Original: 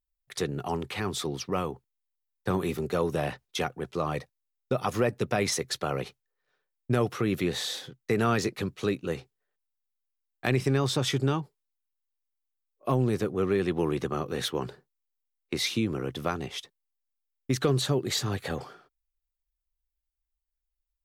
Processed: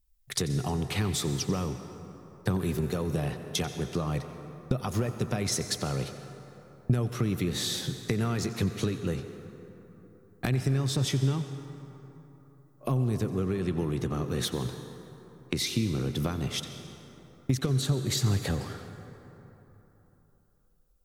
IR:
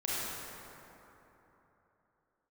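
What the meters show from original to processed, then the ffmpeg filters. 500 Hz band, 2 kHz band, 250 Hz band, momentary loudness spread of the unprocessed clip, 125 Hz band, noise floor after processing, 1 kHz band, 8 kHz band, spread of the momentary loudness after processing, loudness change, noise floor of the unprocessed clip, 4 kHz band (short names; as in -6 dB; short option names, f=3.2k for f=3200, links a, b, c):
-5.0 dB, -4.5 dB, 0.0 dB, 10 LU, +3.5 dB, -62 dBFS, -6.0 dB, +2.0 dB, 18 LU, -1.0 dB, -85 dBFS, -0.5 dB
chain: -filter_complex "[0:a]acompressor=threshold=-37dB:ratio=6,bass=f=250:g=12,treble=f=4k:g=7,asplit=2[a][b];[1:a]atrim=start_sample=2205,lowshelf=f=160:g=-7,adelay=90[c];[b][c]afir=irnorm=-1:irlink=0,volume=-15dB[d];[a][d]amix=inputs=2:normalize=0,volume=5dB"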